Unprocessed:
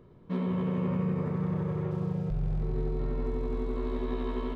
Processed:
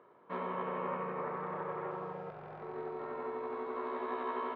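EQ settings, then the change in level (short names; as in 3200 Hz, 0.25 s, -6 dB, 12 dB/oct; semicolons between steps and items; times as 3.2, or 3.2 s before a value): HPF 900 Hz 12 dB/oct; LPF 1400 Hz 12 dB/oct; +9.5 dB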